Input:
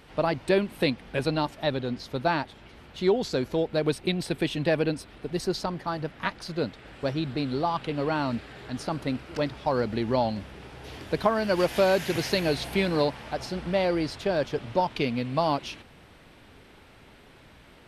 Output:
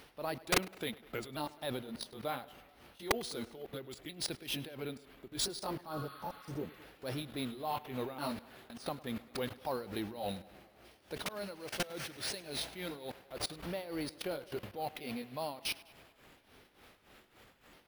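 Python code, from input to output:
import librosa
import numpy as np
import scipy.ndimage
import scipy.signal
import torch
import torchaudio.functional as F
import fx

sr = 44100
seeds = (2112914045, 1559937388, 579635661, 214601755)

p1 = fx.pitch_ramps(x, sr, semitones=-3.0, every_ms=1364)
p2 = fx.level_steps(p1, sr, step_db=20)
p3 = fx.bass_treble(p2, sr, bass_db=-6, treble_db=8)
p4 = fx.rider(p3, sr, range_db=5, speed_s=2.0)
p5 = (np.mod(10.0 ** (20.0 / 20.0) * p4 + 1.0, 2.0) - 1.0) / 10.0 ** (20.0 / 20.0)
p6 = p5 * (1.0 - 0.77 / 2.0 + 0.77 / 2.0 * np.cos(2.0 * np.pi * 3.5 * (np.arange(len(p5)) / sr)))
p7 = fx.spec_repair(p6, sr, seeds[0], start_s=5.95, length_s=0.81, low_hz=1000.0, high_hz=4700.0, source='both')
p8 = p7 + fx.echo_tape(p7, sr, ms=103, feedback_pct=72, wet_db=-19.0, lp_hz=4800.0, drive_db=24.0, wow_cents=27, dry=0)
p9 = np.repeat(scipy.signal.resample_poly(p8, 1, 3), 3)[:len(p8)]
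y = p9 * 10.0 ** (2.0 / 20.0)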